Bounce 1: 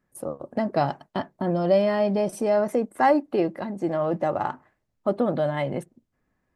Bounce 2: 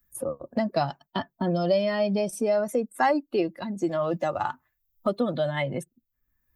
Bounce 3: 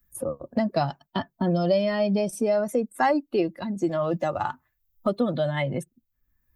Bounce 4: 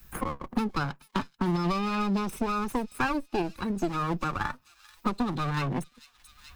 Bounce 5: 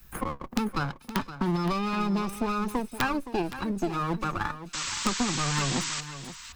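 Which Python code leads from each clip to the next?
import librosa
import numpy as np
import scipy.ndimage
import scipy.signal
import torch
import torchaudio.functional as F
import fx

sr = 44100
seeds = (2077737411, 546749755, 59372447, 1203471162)

y1 = fx.bin_expand(x, sr, power=1.5)
y1 = fx.high_shelf(y1, sr, hz=2300.0, db=8.5)
y1 = fx.band_squash(y1, sr, depth_pct=70)
y2 = fx.low_shelf(y1, sr, hz=220.0, db=5.0)
y3 = fx.lower_of_two(y2, sr, delay_ms=0.78)
y3 = fx.echo_wet_highpass(y3, sr, ms=436, feedback_pct=61, hz=4400.0, wet_db=-15.5)
y3 = fx.band_squash(y3, sr, depth_pct=70)
y3 = y3 * librosa.db_to_amplitude(-2.5)
y4 = (np.mod(10.0 ** (14.5 / 20.0) * y3 + 1.0, 2.0) - 1.0) / 10.0 ** (14.5 / 20.0)
y4 = fx.spec_paint(y4, sr, seeds[0], shape='noise', start_s=4.73, length_s=1.28, low_hz=890.0, high_hz=8200.0, level_db=-33.0)
y4 = y4 + 10.0 ** (-12.5 / 20.0) * np.pad(y4, (int(518 * sr / 1000.0), 0))[:len(y4)]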